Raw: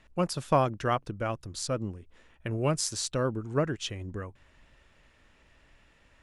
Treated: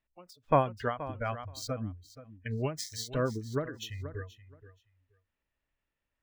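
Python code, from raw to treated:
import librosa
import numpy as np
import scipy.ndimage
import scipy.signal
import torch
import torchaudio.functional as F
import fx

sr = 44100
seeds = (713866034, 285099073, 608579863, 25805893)

y = scipy.ndimage.median_filter(x, 5, mode='constant')
y = fx.peak_eq(y, sr, hz=190.0, db=-2.0, octaves=0.24)
y = fx.noise_reduce_blind(y, sr, reduce_db=25)
y = fx.echo_feedback(y, sr, ms=476, feedback_pct=16, wet_db=-15.5)
y = fx.end_taper(y, sr, db_per_s=160.0)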